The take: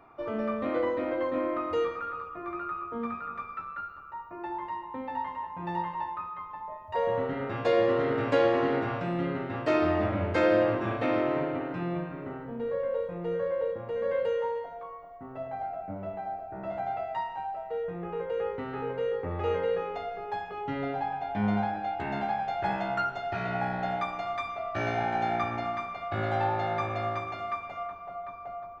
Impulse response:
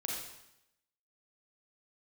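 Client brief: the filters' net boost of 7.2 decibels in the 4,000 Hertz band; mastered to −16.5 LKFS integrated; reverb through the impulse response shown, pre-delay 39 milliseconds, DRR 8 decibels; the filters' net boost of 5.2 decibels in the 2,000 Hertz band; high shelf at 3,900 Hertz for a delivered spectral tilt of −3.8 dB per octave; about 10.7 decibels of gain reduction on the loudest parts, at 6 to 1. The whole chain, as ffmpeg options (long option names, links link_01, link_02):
-filter_complex "[0:a]equalizer=frequency=2000:width_type=o:gain=4,highshelf=frequency=3900:gain=7,equalizer=frequency=4000:width_type=o:gain=4,acompressor=threshold=-30dB:ratio=6,asplit=2[link_01][link_02];[1:a]atrim=start_sample=2205,adelay=39[link_03];[link_02][link_03]afir=irnorm=-1:irlink=0,volume=-10dB[link_04];[link_01][link_04]amix=inputs=2:normalize=0,volume=18dB"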